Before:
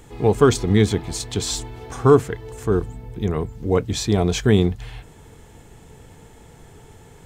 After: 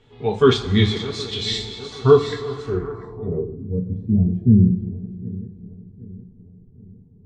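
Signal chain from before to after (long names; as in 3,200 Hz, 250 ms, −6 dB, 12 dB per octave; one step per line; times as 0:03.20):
feedback delay that plays each chunk backwards 382 ms, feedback 67%, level −9.5 dB
noise reduction from a noise print of the clip's start 9 dB
coupled-rooms reverb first 0.22 s, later 2.8 s, from −20 dB, DRR −1.5 dB
low-pass filter sweep 3,500 Hz → 200 Hz, 0:02.60–0:03.70
level −4.5 dB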